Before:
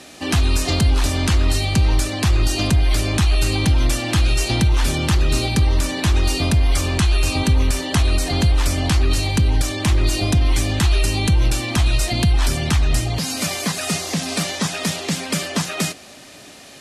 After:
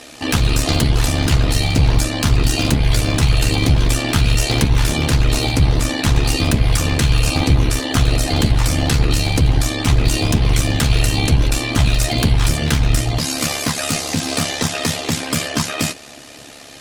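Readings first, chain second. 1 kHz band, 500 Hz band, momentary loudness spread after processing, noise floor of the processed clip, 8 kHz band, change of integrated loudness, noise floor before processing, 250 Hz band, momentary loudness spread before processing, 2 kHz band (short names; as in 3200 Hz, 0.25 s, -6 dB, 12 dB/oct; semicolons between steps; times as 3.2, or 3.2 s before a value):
+2.5 dB, +3.0 dB, 4 LU, -38 dBFS, +2.5 dB, +2.0 dB, -42 dBFS, +2.5 dB, 4 LU, +2.5 dB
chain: one-sided fold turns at -15.5 dBFS; AM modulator 71 Hz, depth 95%; notch comb 190 Hz; gain +8.5 dB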